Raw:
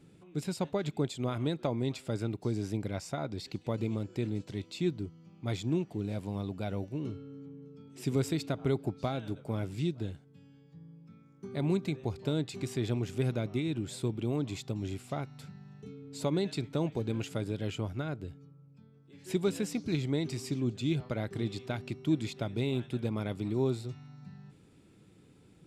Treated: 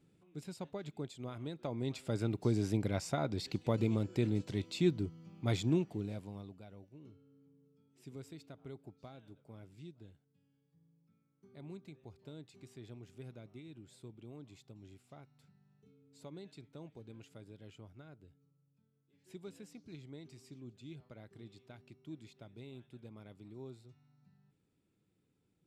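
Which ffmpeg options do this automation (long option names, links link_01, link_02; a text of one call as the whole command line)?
ffmpeg -i in.wav -af "volume=1dB,afade=type=in:start_time=1.55:duration=0.93:silence=0.251189,afade=type=out:start_time=5.6:duration=0.63:silence=0.316228,afade=type=out:start_time=6.23:duration=0.44:silence=0.316228" out.wav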